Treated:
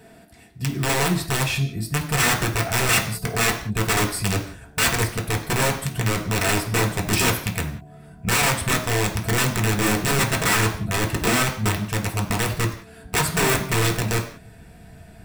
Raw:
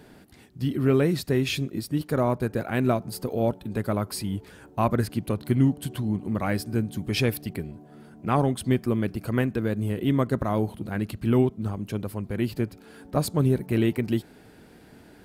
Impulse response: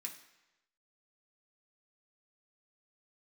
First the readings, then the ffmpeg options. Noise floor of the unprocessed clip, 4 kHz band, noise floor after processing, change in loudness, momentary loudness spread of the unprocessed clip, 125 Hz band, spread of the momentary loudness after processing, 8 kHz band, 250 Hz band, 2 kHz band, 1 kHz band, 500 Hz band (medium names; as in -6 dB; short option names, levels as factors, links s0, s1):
-52 dBFS, +12.5 dB, -47 dBFS, +4.5 dB, 9 LU, +3.0 dB, 7 LU, +17.5 dB, -2.0 dB, +14.0 dB, +7.0 dB, 0.0 dB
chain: -filter_complex "[0:a]equalizer=f=670:t=o:w=0.24:g=14.5,acontrast=62,asubboost=boost=9.5:cutoff=110,aeval=exprs='(mod(2.99*val(0)+1,2)-1)/2.99':c=same[s0];[1:a]atrim=start_sample=2205,afade=t=out:st=0.25:d=0.01,atrim=end_sample=11466[s1];[s0][s1]afir=irnorm=-1:irlink=0"